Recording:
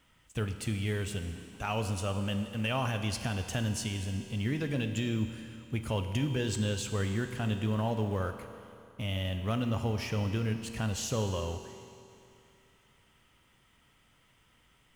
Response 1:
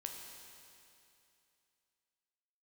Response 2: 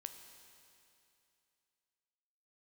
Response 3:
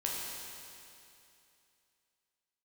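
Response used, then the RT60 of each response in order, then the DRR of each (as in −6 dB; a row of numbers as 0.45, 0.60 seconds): 2; 2.7, 2.7, 2.7 seconds; 1.5, 6.5, −4.0 decibels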